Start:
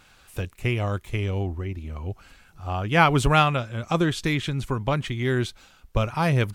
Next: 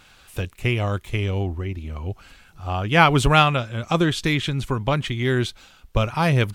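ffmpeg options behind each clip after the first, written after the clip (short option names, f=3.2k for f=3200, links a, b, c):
-af "equalizer=f=3.3k:w=1.5:g=3,volume=2.5dB"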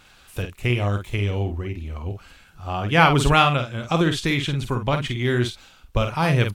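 -filter_complex "[0:a]asplit=2[a][b];[b]adelay=49,volume=-7dB[c];[a][c]amix=inputs=2:normalize=0,volume=-1dB"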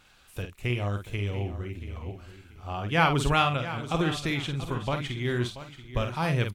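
-af "aecho=1:1:683|1366|2049:0.211|0.0528|0.0132,volume=-7dB"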